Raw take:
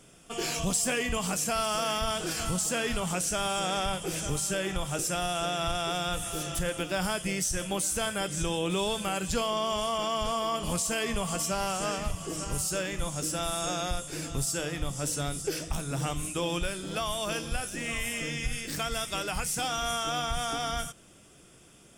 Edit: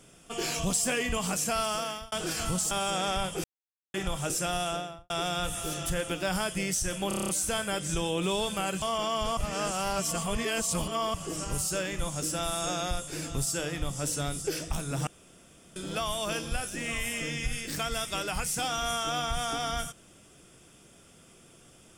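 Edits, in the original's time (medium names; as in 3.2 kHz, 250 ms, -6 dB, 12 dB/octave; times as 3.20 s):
1.51–2.12 s: fade out equal-power
2.71–3.40 s: delete
4.13–4.63 s: mute
5.32–5.79 s: studio fade out
7.77 s: stutter 0.03 s, 8 plays
9.30–9.82 s: delete
10.37–12.14 s: reverse
16.07–16.76 s: room tone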